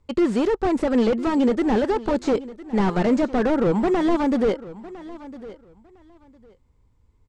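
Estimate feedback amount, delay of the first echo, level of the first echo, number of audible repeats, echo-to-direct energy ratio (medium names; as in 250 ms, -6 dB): 19%, 1006 ms, -17.5 dB, 2, -17.5 dB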